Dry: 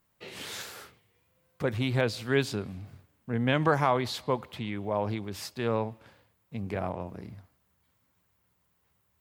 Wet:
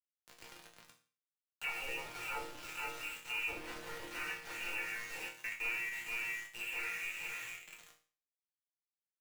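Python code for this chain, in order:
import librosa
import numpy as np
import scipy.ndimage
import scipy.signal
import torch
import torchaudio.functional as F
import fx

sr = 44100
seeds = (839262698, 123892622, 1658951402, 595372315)

y = fx.lower_of_two(x, sr, delay_ms=2.1)
y = fx.air_absorb(y, sr, metres=310.0)
y = fx.freq_invert(y, sr, carrier_hz=2800)
y = fx.peak_eq(y, sr, hz=730.0, db=10.0, octaves=0.22, at=(0.73, 1.84))
y = fx.echo_feedback(y, sr, ms=472, feedback_pct=31, wet_db=-5.0)
y = fx.room_shoebox(y, sr, seeds[0], volume_m3=180.0, walls='mixed', distance_m=1.9)
y = fx.level_steps(y, sr, step_db=13, at=(5.27, 5.91), fade=0.02)
y = fx.env_lowpass_down(y, sr, base_hz=600.0, full_db=-16.0)
y = np.where(np.abs(y) >= 10.0 ** (-32.0 / 20.0), y, 0.0)
y = fx.resonator_bank(y, sr, root=46, chord='sus4', decay_s=0.37)
y = fx.band_squash(y, sr, depth_pct=40)
y = F.gain(torch.from_numpy(y), 3.0).numpy()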